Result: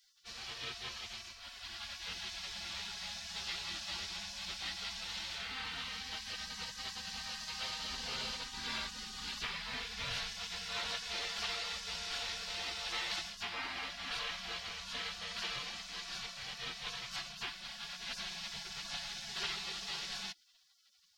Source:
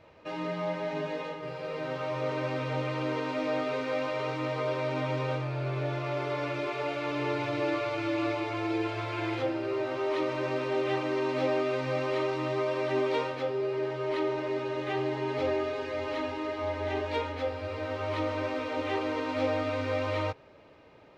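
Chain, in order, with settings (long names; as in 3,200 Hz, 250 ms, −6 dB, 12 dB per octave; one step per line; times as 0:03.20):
gate on every frequency bin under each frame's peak −30 dB weak
0:07.89–0:10.31: low-shelf EQ 140 Hz +6 dB
level +11.5 dB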